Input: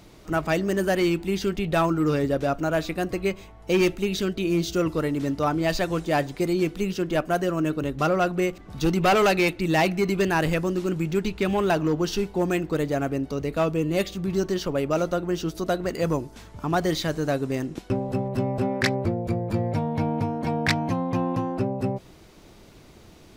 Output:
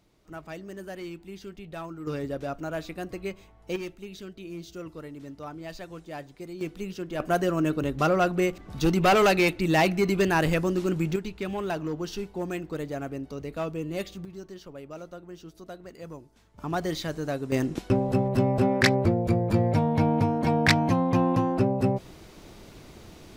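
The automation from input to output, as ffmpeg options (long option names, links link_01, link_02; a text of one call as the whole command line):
ffmpeg -i in.wav -af "asetnsamples=nb_out_samples=441:pad=0,asendcmd='2.07 volume volume -8.5dB;3.76 volume volume -15.5dB;6.61 volume volume -8.5dB;7.2 volume volume -0.5dB;11.16 volume volume -8dB;14.25 volume volume -17dB;16.58 volume volume -5.5dB;17.52 volume volume 2.5dB',volume=-16dB" out.wav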